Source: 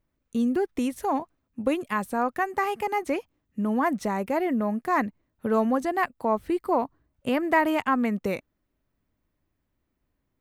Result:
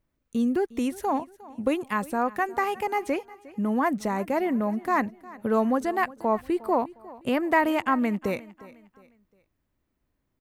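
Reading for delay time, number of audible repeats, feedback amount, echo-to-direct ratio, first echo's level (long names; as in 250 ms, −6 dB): 357 ms, 2, 37%, −19.5 dB, −20.0 dB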